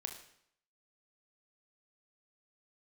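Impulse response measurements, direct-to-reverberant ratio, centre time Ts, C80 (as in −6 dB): 4.0 dB, 20 ms, 11.0 dB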